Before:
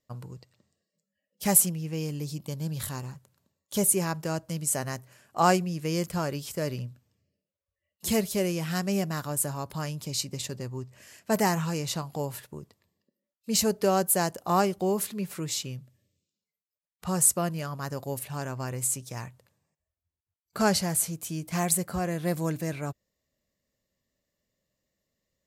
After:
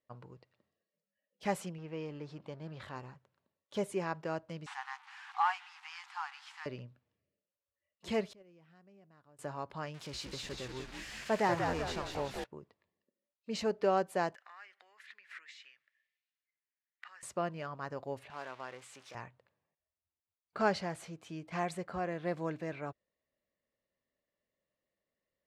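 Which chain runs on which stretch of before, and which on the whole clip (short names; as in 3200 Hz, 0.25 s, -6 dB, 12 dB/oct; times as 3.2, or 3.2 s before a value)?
1.78–2.96 G.711 law mismatch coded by mu + LPF 3200 Hz 6 dB/oct + low shelf 190 Hz -5.5 dB
4.66–6.66 delta modulation 64 kbps, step -36.5 dBFS + brick-wall FIR high-pass 740 Hz
8.33–9.39 gate -22 dBFS, range -26 dB + compressor 3:1, threshold -53 dBFS + low shelf 450 Hz +6.5 dB
9.94–12.44 switching spikes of -22.5 dBFS + frequency-shifting echo 0.189 s, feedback 52%, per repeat -89 Hz, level -4 dB
14.35–17.23 compressor 8:1, threshold -39 dBFS + resonant high-pass 1800 Hz, resonance Q 4.8
18.3–19.15 switching spikes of -24 dBFS + HPF 680 Hz 6 dB/oct + high shelf 5200 Hz -9 dB
whole clip: LPF 5100 Hz 12 dB/oct; tone controls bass -10 dB, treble -13 dB; gain -4 dB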